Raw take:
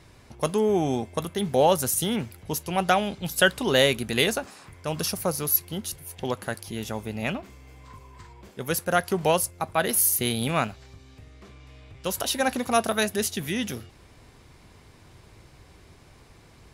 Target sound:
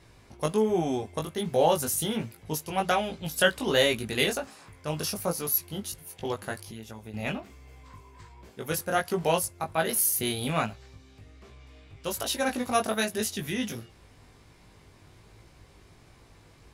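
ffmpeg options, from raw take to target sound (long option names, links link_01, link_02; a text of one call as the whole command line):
ffmpeg -i in.wav -filter_complex "[0:a]flanger=delay=17.5:depth=2.6:speed=1.3,asettb=1/sr,asplit=3[link_01][link_02][link_03];[link_01]atrim=end=6.594[link_04];[link_02]atrim=start=6.59:end=7.14,asetpts=PTS-STARTPTS,afade=type=in:duration=0.004:curve=qsin,afade=type=out:start_time=0.546:duration=0.004:curve=qsin,acompressor=threshold=-40dB:ratio=4[link_05];[link_03]atrim=start=7.136[link_06];[link_04][link_05]acrossfade=duration=0.004:curve1=hsin:curve2=qsin[link_07];[link_07][link_06]acrossfade=duration=0.004:curve1=qsin:curve2=hsin" out.wav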